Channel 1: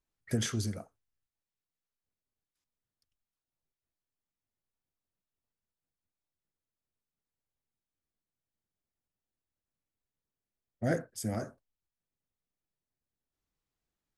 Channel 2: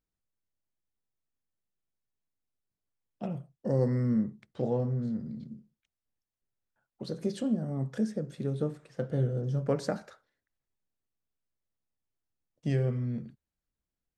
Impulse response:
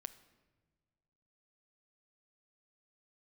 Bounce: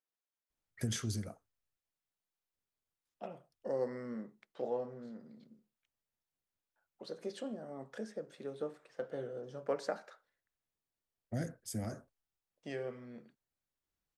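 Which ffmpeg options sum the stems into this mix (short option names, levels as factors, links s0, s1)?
-filter_complex "[0:a]acrossover=split=230|3000[s0][s1][s2];[s1]acompressor=threshold=0.0126:ratio=6[s3];[s0][s3][s2]amix=inputs=3:normalize=0,adelay=500,volume=0.668[s4];[1:a]highpass=490,highshelf=f=4500:g=-7.5,volume=0.794[s5];[s4][s5]amix=inputs=2:normalize=0"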